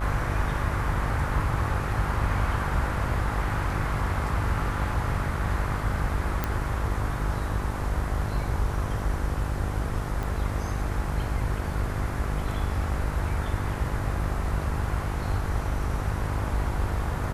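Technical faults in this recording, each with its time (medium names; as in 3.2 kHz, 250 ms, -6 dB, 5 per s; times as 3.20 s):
buzz 50 Hz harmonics 29 -31 dBFS
6.44 s: pop -12 dBFS
10.23 s: pop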